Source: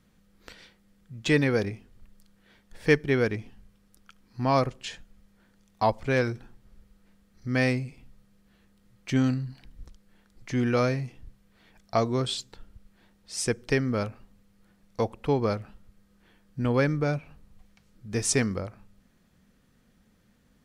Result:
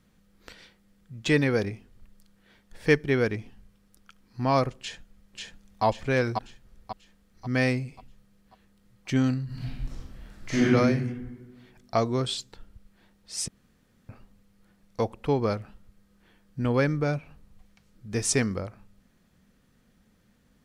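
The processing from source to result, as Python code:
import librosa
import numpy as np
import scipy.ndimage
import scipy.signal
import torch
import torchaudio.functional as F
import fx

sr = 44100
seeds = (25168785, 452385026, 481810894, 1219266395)

y = fx.echo_throw(x, sr, start_s=4.79, length_s=1.05, ms=540, feedback_pct=45, wet_db=-2.5)
y = fx.reverb_throw(y, sr, start_s=9.45, length_s=1.17, rt60_s=1.5, drr_db=-10.5)
y = fx.edit(y, sr, fx.room_tone_fill(start_s=13.48, length_s=0.61), tone=tone)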